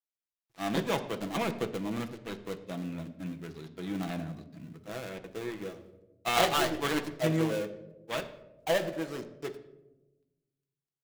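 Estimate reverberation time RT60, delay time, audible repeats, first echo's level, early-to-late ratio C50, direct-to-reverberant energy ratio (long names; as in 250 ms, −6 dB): 1.1 s, no echo audible, no echo audible, no echo audible, 13.0 dB, 5.5 dB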